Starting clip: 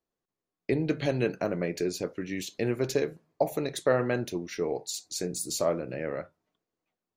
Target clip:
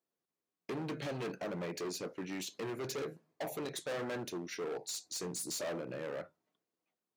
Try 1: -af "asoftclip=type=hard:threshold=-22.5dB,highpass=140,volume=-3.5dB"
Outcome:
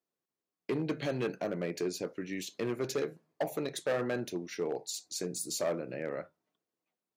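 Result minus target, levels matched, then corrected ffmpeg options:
hard clip: distortion -8 dB
-af "asoftclip=type=hard:threshold=-32dB,highpass=140,volume=-3.5dB"

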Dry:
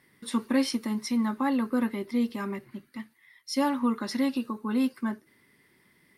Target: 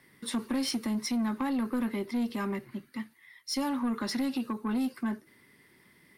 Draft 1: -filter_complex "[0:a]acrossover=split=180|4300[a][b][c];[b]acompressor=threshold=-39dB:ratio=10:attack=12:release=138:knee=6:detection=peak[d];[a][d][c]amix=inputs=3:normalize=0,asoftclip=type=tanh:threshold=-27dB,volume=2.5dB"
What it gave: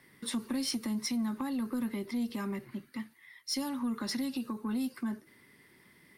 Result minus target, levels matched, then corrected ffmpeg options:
compressor: peak gain reduction +9.5 dB
-filter_complex "[0:a]acrossover=split=180|4300[a][b][c];[b]acompressor=threshold=-28.5dB:ratio=10:attack=12:release=138:knee=6:detection=peak[d];[a][d][c]amix=inputs=3:normalize=0,asoftclip=type=tanh:threshold=-27dB,volume=2.5dB"

